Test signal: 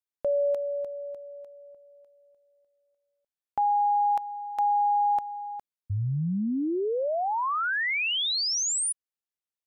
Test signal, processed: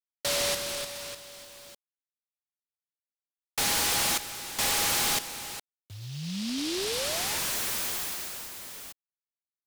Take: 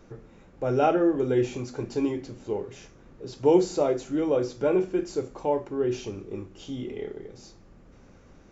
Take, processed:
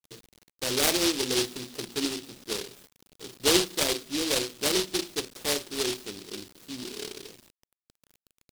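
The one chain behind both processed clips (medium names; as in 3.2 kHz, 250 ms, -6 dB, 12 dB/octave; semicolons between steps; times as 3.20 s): gate with hold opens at -45 dBFS, closes at -49 dBFS, hold 17 ms, range -33 dB; three-band isolator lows -17 dB, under 160 Hz, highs -12 dB, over 2.9 kHz; bit crusher 8-bit; delay time shaken by noise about 3.9 kHz, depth 0.34 ms; trim -3 dB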